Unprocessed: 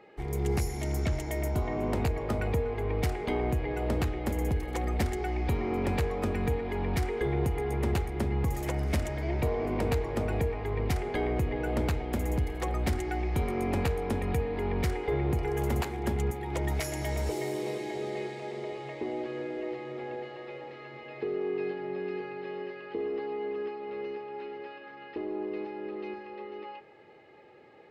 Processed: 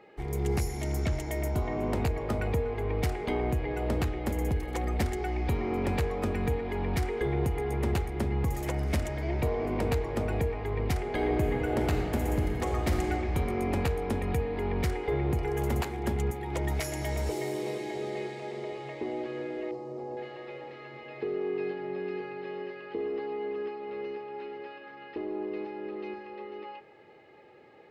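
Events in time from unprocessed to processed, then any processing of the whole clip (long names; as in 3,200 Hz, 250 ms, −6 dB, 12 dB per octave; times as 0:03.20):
0:11.07–0:13.08: thrown reverb, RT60 2.7 s, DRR 2 dB
0:19.71–0:20.17: flat-topped bell 2,300 Hz −15.5 dB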